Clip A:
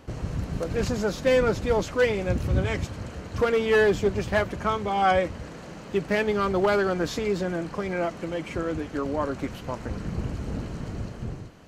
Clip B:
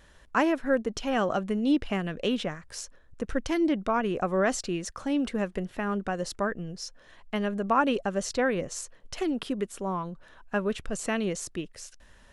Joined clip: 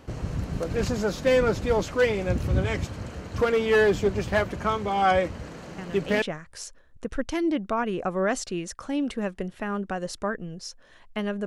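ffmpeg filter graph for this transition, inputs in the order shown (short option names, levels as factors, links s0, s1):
-filter_complex "[1:a]asplit=2[s0][s1];[0:a]apad=whole_dur=11.46,atrim=end=11.46,atrim=end=6.222[s2];[s1]atrim=start=2.388:end=7.63[s3];[s0]atrim=start=1.95:end=2.39,asetpts=PTS-STARTPTS,volume=0.422,afade=t=in:d=0.004:c=hsin,afade=t=out:st=0.436:d=0.004:c=hsin,adelay=5780[s4];[s2][s3]acrossfade=d=0.004:c1=hsin:c2=hsin[s5];[s5][s4]amix=inputs=2:normalize=0"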